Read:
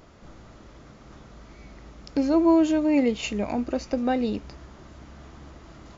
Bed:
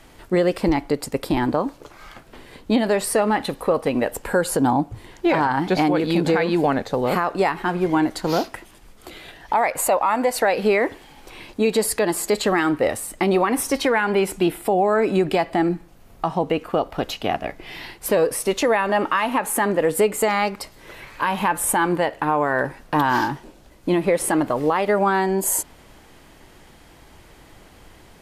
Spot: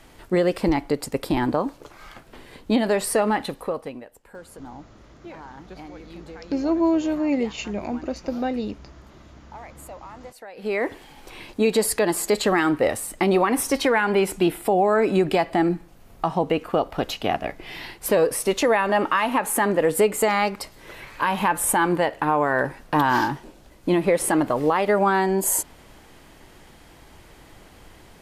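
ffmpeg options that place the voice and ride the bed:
-filter_complex "[0:a]adelay=4350,volume=-1.5dB[a];[1:a]volume=20dB,afade=t=out:st=3.28:d=0.77:silence=0.0944061,afade=t=in:st=10.54:d=0.44:silence=0.0841395[b];[a][b]amix=inputs=2:normalize=0"

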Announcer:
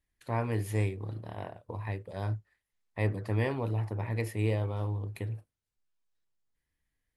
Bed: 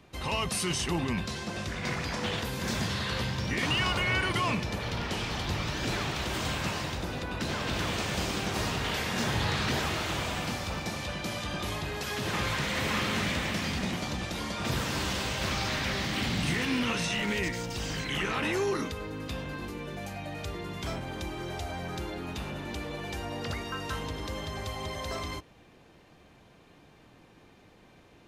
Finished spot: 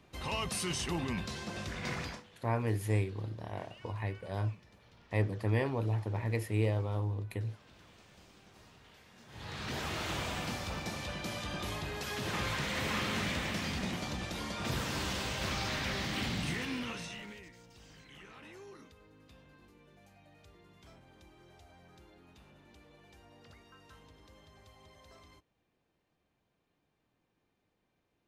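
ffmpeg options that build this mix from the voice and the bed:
-filter_complex "[0:a]adelay=2150,volume=-1dB[a];[1:a]volume=18.5dB,afade=t=out:st=2.02:d=0.22:silence=0.0707946,afade=t=in:st=9.28:d=0.8:silence=0.0668344,afade=t=out:st=16.21:d=1.22:silence=0.125893[b];[a][b]amix=inputs=2:normalize=0"

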